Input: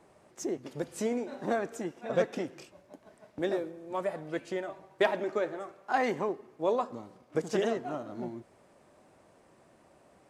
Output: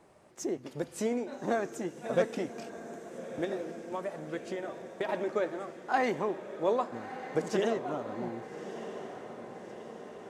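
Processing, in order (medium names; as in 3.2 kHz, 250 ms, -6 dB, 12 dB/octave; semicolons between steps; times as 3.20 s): 3.44–5.09 s: compression 6:1, threshold -32 dBFS, peak gain reduction 11.5 dB; on a send: echo that smears into a reverb 1255 ms, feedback 61%, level -11 dB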